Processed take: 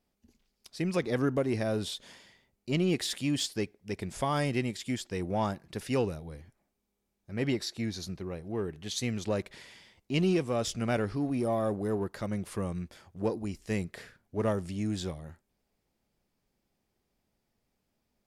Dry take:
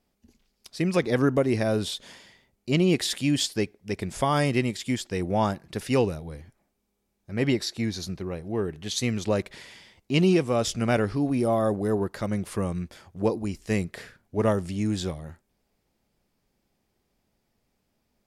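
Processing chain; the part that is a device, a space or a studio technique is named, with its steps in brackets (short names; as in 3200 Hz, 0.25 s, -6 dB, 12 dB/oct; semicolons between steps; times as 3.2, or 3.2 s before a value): parallel distortion (in parallel at -12 dB: hard clip -25.5 dBFS, distortion -7 dB); on the sum: gain -7 dB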